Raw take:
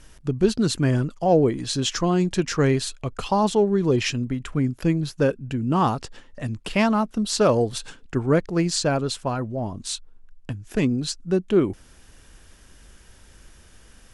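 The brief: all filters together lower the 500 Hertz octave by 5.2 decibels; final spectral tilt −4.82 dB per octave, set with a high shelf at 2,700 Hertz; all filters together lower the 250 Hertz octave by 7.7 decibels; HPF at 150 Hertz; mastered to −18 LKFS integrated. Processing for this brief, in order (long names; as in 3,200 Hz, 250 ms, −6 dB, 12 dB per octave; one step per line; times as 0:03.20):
high-pass filter 150 Hz
parametric band 250 Hz −8.5 dB
parametric band 500 Hz −3.5 dB
high-shelf EQ 2,700 Hz −4.5 dB
level +10.5 dB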